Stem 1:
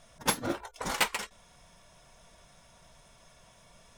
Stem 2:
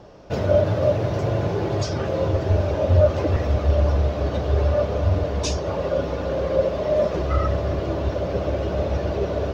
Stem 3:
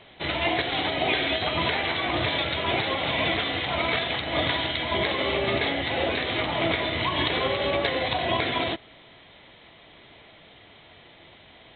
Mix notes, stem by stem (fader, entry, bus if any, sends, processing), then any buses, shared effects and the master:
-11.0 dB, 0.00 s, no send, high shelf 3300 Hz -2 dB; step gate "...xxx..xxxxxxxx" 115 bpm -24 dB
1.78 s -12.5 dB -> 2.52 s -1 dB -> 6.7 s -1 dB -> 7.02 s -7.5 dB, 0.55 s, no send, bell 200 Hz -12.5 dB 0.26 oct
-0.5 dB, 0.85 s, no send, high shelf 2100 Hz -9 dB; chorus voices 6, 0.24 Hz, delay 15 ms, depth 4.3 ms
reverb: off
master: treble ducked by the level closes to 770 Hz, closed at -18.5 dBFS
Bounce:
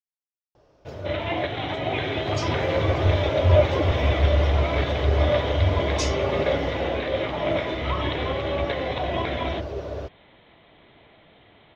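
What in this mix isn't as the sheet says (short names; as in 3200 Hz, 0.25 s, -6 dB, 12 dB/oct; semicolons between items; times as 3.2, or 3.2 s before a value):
stem 1: muted; stem 3: missing chorus voices 6, 0.24 Hz, delay 15 ms, depth 4.3 ms; master: missing treble ducked by the level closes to 770 Hz, closed at -18.5 dBFS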